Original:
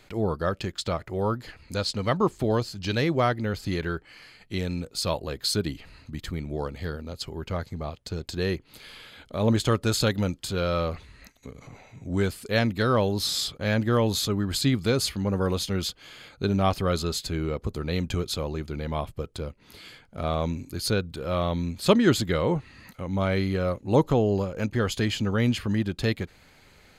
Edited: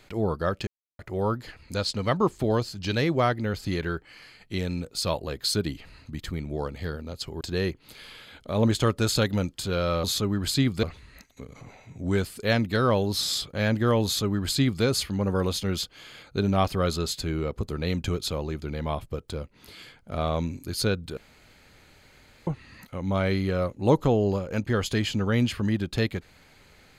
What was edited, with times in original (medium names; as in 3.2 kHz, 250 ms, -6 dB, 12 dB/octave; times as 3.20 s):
0.67–0.99 s: mute
7.41–8.26 s: delete
14.11–14.90 s: copy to 10.89 s
21.23–22.53 s: room tone